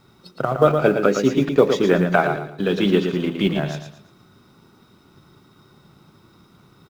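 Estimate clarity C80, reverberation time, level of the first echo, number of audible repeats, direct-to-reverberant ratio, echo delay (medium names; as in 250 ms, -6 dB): no reverb, no reverb, -6.5 dB, 3, no reverb, 114 ms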